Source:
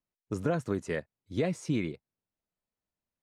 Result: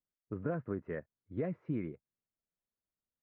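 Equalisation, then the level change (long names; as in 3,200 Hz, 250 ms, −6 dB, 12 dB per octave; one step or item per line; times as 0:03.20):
low-pass filter 1,800 Hz 24 dB per octave
parametric band 840 Hz −4.5 dB 0.57 octaves
−6.0 dB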